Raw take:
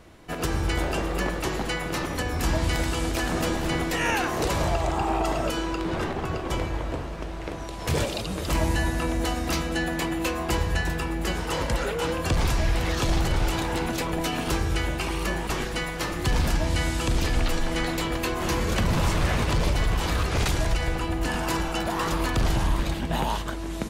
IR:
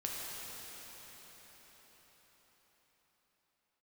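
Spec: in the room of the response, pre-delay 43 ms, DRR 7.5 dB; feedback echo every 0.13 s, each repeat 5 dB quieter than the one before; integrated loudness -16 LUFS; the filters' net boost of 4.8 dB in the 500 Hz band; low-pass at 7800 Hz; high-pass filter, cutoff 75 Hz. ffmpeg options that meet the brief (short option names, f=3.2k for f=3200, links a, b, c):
-filter_complex "[0:a]highpass=75,lowpass=7.8k,equalizer=f=500:t=o:g=6,aecho=1:1:130|260|390|520|650|780|910:0.562|0.315|0.176|0.0988|0.0553|0.031|0.0173,asplit=2[a][b];[1:a]atrim=start_sample=2205,adelay=43[c];[b][c]afir=irnorm=-1:irlink=0,volume=-10.5dB[d];[a][d]amix=inputs=2:normalize=0,volume=7.5dB"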